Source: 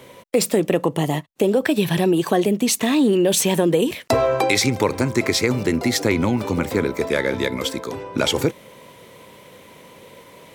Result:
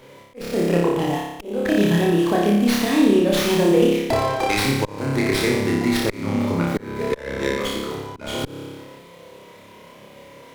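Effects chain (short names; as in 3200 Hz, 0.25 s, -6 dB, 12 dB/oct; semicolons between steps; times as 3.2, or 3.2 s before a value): on a send: flutter echo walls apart 5 m, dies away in 1 s; on the sum: auto swell 0.351 s; running maximum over 5 samples; gain -4 dB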